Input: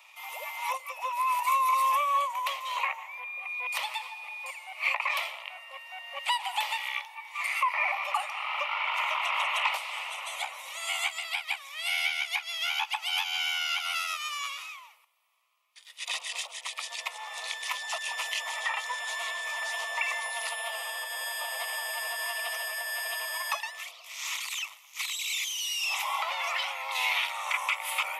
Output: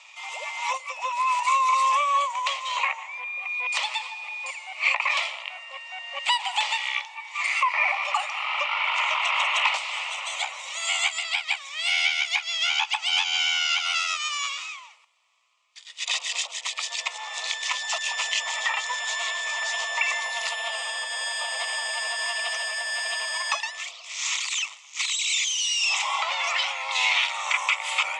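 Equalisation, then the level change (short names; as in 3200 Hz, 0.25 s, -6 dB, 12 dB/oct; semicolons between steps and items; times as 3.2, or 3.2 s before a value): elliptic low-pass 7600 Hz, stop band 60 dB; high shelf 4200 Hz +8 dB; +4.0 dB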